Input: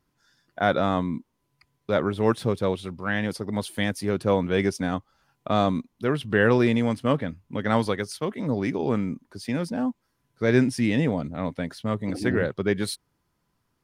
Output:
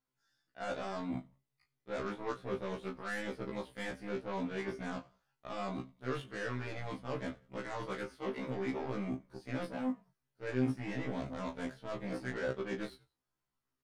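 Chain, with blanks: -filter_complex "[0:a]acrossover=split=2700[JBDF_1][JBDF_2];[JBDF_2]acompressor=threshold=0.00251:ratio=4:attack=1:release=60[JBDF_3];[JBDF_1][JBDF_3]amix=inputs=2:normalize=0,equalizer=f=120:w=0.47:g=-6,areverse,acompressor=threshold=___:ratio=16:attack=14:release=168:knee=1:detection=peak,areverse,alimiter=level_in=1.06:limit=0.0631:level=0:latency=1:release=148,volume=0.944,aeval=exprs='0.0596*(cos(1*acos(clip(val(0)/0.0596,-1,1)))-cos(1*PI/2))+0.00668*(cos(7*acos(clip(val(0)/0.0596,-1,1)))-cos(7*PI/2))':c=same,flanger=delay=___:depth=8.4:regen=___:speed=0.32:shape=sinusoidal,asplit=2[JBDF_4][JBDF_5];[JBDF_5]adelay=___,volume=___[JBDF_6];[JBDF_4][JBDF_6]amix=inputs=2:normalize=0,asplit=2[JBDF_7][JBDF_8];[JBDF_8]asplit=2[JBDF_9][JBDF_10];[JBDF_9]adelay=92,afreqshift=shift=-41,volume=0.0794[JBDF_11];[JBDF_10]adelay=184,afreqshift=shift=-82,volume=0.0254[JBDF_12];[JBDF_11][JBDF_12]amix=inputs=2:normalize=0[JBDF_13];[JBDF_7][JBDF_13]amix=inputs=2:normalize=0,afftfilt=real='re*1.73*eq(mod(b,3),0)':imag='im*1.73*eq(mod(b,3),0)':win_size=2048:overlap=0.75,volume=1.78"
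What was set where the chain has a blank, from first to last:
0.0224, 8.2, -55, 23, 0.398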